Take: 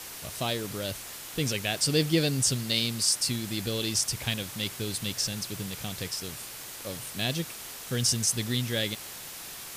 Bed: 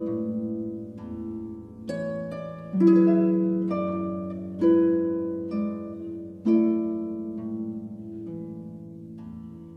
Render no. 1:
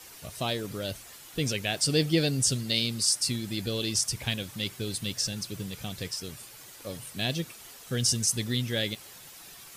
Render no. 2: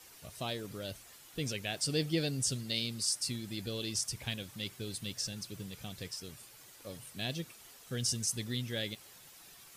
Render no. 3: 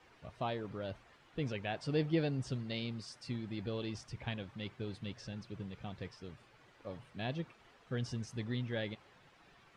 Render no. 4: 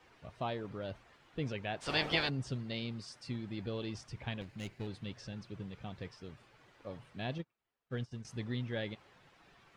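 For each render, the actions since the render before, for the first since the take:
noise reduction 9 dB, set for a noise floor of -42 dBFS
trim -7.5 dB
low-pass 2.1 kHz 12 dB/octave; dynamic bell 920 Hz, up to +6 dB, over -58 dBFS, Q 1.7
1.80–2.28 s: spectral peaks clipped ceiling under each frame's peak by 27 dB; 4.41–4.87 s: comb filter that takes the minimum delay 0.43 ms; 7.38–8.25 s: upward expansion 2.5:1, over -53 dBFS

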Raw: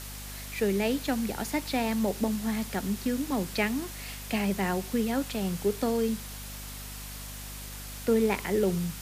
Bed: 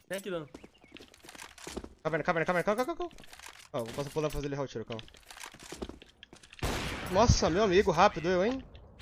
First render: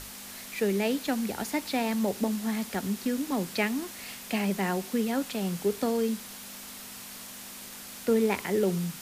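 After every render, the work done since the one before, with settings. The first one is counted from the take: hum notches 50/100/150 Hz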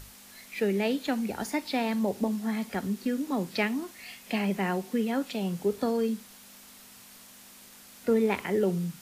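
noise print and reduce 8 dB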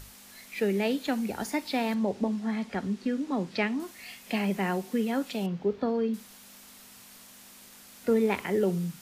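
1.94–3.80 s: distance through air 78 m; 5.46–6.14 s: distance through air 220 m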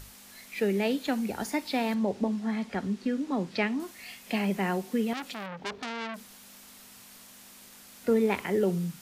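5.13–6.18 s: transformer saturation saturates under 3.4 kHz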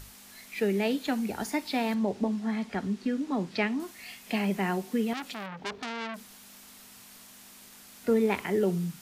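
band-stop 530 Hz, Q 12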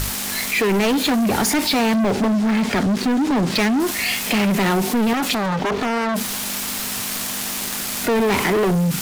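waveshaping leveller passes 5; level flattener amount 50%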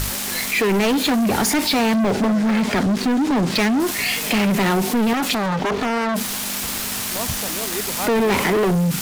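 add bed -5.5 dB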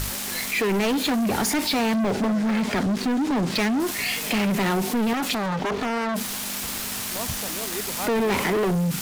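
trim -4.5 dB

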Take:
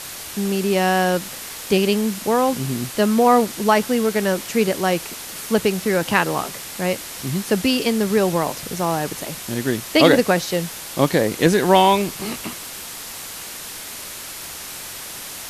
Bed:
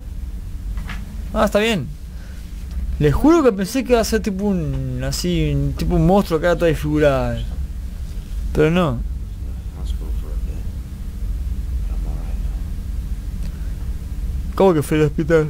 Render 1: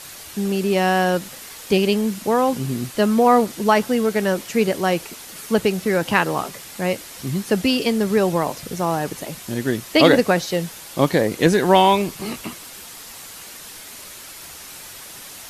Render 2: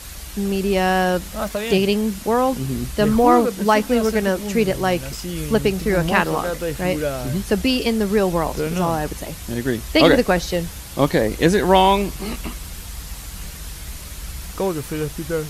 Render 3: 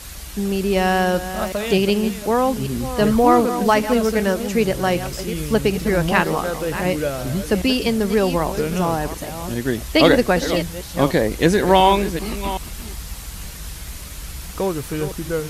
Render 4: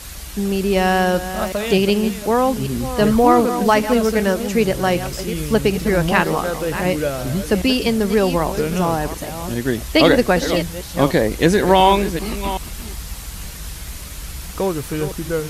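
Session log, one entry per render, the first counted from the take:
noise reduction 6 dB, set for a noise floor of -34 dBFS
add bed -9 dB
chunks repeated in reverse 381 ms, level -11 dB
trim +1.5 dB; peak limiter -2 dBFS, peak gain reduction 2 dB

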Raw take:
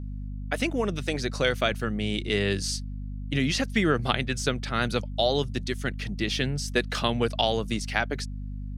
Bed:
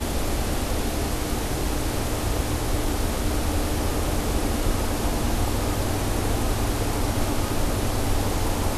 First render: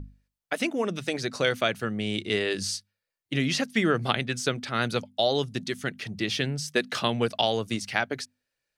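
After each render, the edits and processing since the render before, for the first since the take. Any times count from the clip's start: hum notches 50/100/150/200/250 Hz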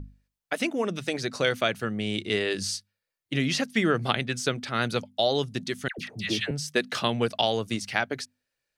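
5.88–6.51 s: phase dispersion lows, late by 102 ms, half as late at 1 kHz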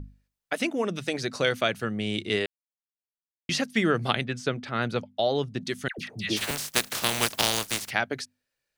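2.46–3.49 s: mute; 4.24–5.65 s: low-pass 2.2 kHz 6 dB/octave; 6.36–7.89 s: spectral contrast reduction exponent 0.25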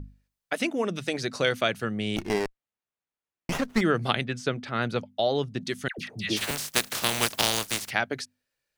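2.16–3.81 s: sliding maximum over 9 samples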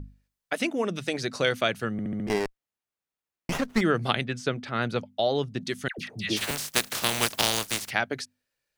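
1.92 s: stutter in place 0.07 s, 5 plays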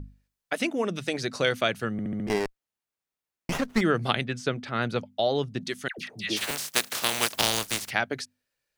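5.68–7.36 s: bass shelf 180 Hz -10 dB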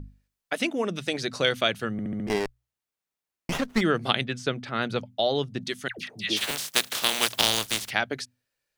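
hum notches 60/120 Hz; dynamic bell 3.4 kHz, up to +5 dB, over -42 dBFS, Q 2.4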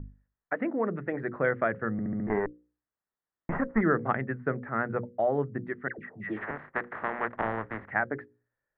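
Chebyshev low-pass 1.9 kHz, order 5; hum notches 60/120/180/240/300/360/420/480/540 Hz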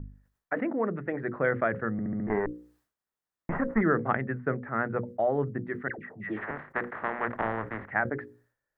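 decay stretcher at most 130 dB/s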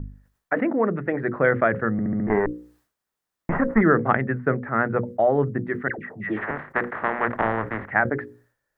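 trim +7 dB

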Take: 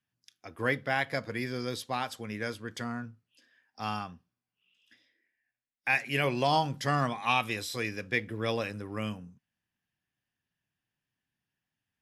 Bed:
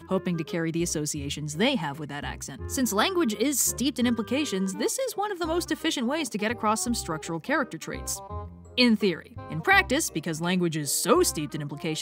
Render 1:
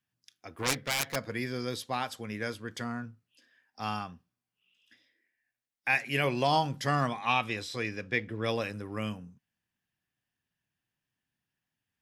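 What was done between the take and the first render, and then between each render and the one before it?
0.52–1.16 s: self-modulated delay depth 0.8 ms; 7.19–8.44 s: distance through air 57 m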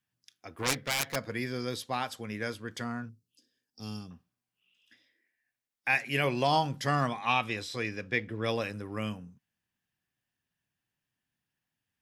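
3.09–4.11 s: FFT filter 430 Hz 0 dB, 730 Hz -19 dB, 2 kHz -19 dB, 5 kHz +1 dB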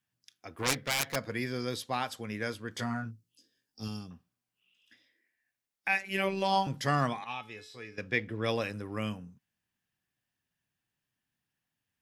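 2.74–3.88 s: doubling 18 ms -2.5 dB; 5.88–6.67 s: robot voice 193 Hz; 7.24–7.98 s: feedback comb 430 Hz, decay 0.32 s, mix 80%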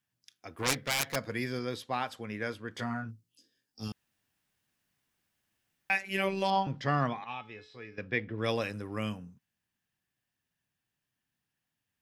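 1.59–3.09 s: tone controls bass -2 dB, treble -8 dB; 3.92–5.90 s: room tone; 6.50–8.38 s: distance through air 180 m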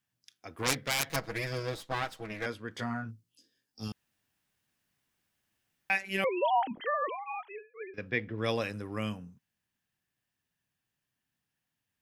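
1.09–2.46 s: comb filter that takes the minimum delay 6.2 ms; 6.24–7.94 s: formants replaced by sine waves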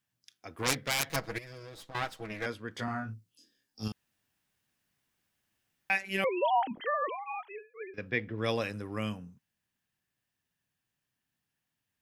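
1.38–1.95 s: compression 10:1, threshold -43 dBFS; 2.85–3.88 s: doubling 28 ms -3 dB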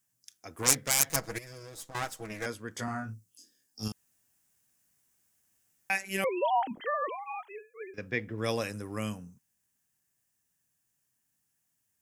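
resonant high shelf 5.2 kHz +9.5 dB, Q 1.5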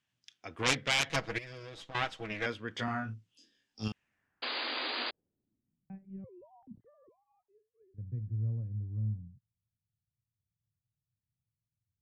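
low-pass sweep 3.2 kHz -> 110 Hz, 3.83–6.21 s; 4.42–5.11 s: painted sound noise 230–4900 Hz -36 dBFS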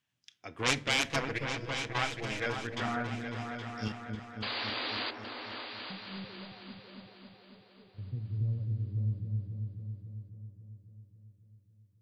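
delay with an opening low-pass 273 ms, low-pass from 400 Hz, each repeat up 2 oct, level -3 dB; simulated room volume 680 m³, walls furnished, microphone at 0.32 m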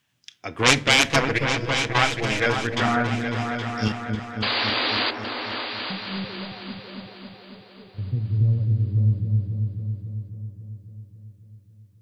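trim +12 dB; peak limiter -1 dBFS, peak gain reduction 1 dB

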